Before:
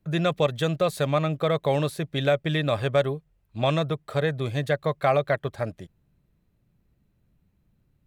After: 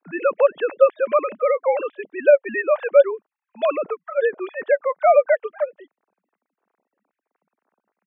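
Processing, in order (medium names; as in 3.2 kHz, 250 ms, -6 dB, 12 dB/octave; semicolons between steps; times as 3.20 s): formants replaced by sine waves; band-pass 450–2300 Hz; trim +7 dB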